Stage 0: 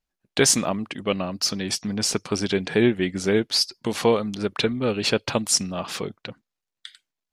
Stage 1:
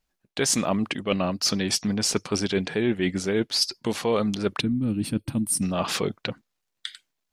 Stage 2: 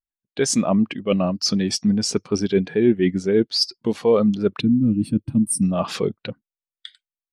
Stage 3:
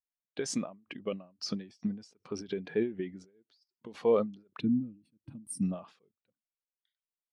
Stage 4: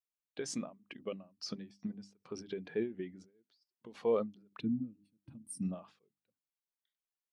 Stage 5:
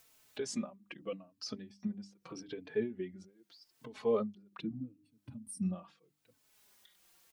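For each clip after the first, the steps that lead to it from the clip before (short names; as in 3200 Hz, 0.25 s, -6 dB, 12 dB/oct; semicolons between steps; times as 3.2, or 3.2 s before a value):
spectral gain 4.6–5.63, 330–8100 Hz -19 dB; reverse; compressor 6:1, threshold -27 dBFS, peak gain reduction 13 dB; reverse; gain +6 dB
spectral expander 1.5:1; gain +1.5 dB
LPF 3100 Hz 6 dB/oct; low shelf 130 Hz -10 dB; ending taper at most 150 dB/s; gain -7.5 dB
notches 50/100/150/200/250/300 Hz; gain -5 dB
upward compressor, threshold -43 dBFS; endless flanger 4 ms -0.81 Hz; gain +3 dB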